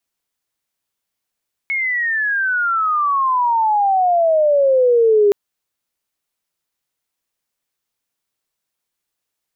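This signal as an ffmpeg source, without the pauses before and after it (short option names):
-f lavfi -i "aevalsrc='pow(10,(-17+8*t/3.62)/20)*sin(2*PI*2200*3.62/log(400/2200)*(exp(log(400/2200)*t/3.62)-1))':d=3.62:s=44100"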